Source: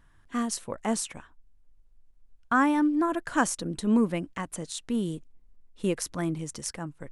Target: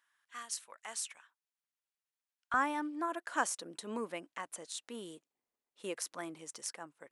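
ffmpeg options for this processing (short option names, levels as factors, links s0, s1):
-af "asetnsamples=n=441:p=0,asendcmd='2.54 highpass f 510',highpass=1400,volume=0.501"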